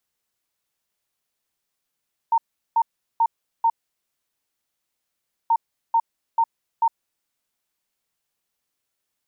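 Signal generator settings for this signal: beep pattern sine 916 Hz, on 0.06 s, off 0.38 s, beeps 4, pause 1.80 s, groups 2, -14.5 dBFS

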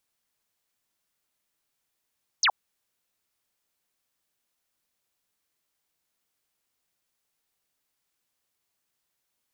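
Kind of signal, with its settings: laser zap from 6800 Hz, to 690 Hz, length 0.07 s sine, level -18 dB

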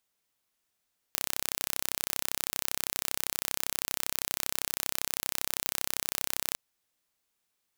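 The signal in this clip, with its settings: pulse train 32.6/s, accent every 0, -2.5 dBFS 5.40 s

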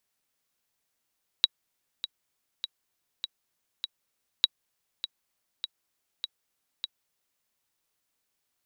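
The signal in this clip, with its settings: metronome 100 bpm, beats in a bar 5, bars 2, 3870 Hz, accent 12.5 dB -6.5 dBFS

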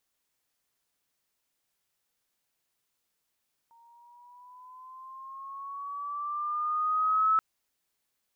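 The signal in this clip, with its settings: gliding synth tone sine, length 3.68 s, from 923 Hz, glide +6 st, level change +36 dB, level -20 dB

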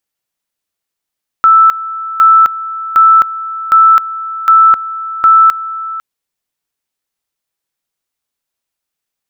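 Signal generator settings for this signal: two-level tone 1320 Hz -2.5 dBFS, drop 15.5 dB, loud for 0.26 s, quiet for 0.50 s, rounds 6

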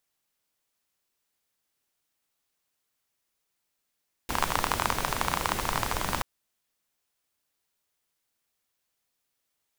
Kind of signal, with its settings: rain from filtered ticks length 1.93 s, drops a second 27, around 1000 Hz, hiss -1 dB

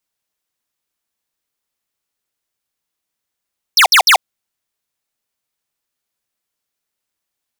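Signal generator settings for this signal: burst of laser zaps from 6000 Hz, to 640 Hz, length 0.09 s square, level -8 dB, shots 3, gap 0.06 s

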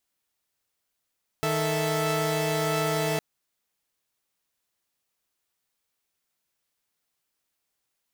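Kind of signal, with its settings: chord D#3/A4/E5 saw, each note -26 dBFS 1.76 s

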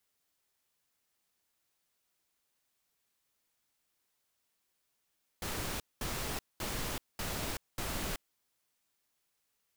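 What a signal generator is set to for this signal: noise bursts pink, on 0.38 s, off 0.21 s, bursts 5, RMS -37 dBFS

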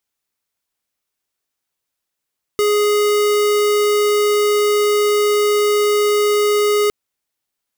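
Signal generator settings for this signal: tone square 416 Hz -15 dBFS 4.31 s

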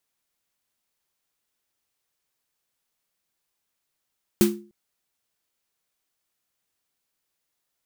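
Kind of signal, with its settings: snare drum length 0.30 s, tones 210 Hz, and 350 Hz, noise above 710 Hz, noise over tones -7.5 dB, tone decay 0.39 s, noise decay 0.24 s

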